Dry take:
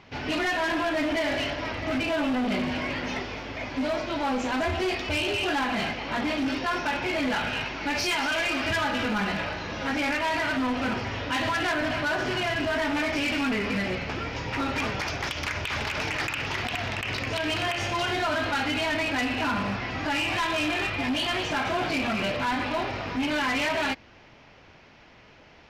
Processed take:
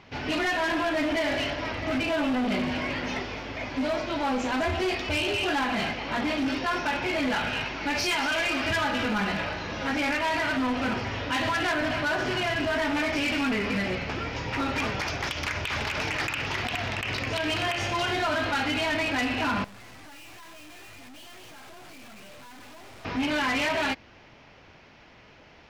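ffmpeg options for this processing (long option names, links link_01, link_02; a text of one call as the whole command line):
ffmpeg -i in.wav -filter_complex "[0:a]asettb=1/sr,asplit=3[link_01][link_02][link_03];[link_01]atrim=end=19.644[link_04];[link_02]atrim=start=19.64:end=23.05,asetpts=PTS-STARTPTS,afade=type=in:duration=0.004:curve=qsin,afade=type=out:start_time=3.406:duration=0.004:curve=qsin,aeval=exprs='(tanh(224*val(0)+0.75)-tanh(0.75))/224':channel_layout=same[link_05];[link_03]atrim=start=23.046[link_06];[link_04][link_05]acrossfade=duration=0.004:curve1=hsin:curve2=qsin[link_07];[link_07][link_06]acrossfade=duration=0.004:curve1=qsin:curve2=hsin" out.wav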